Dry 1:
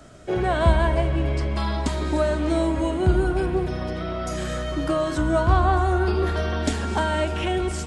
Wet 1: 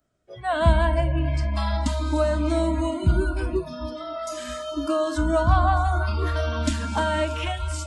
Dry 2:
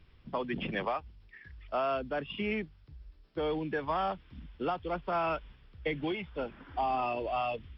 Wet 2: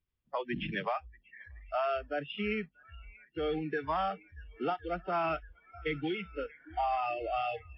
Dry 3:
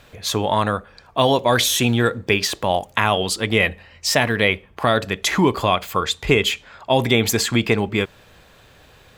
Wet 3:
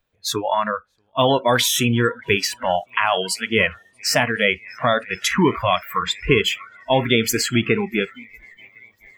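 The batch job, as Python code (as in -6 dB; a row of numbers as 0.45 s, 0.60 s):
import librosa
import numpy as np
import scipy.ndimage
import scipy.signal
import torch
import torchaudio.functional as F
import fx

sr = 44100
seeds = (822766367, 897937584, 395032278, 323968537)

y = fx.echo_swing(x, sr, ms=1060, ratio=1.5, feedback_pct=67, wet_db=-18)
y = fx.noise_reduce_blind(y, sr, reduce_db=27)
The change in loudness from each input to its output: -1.0 LU, -0.5 LU, -0.5 LU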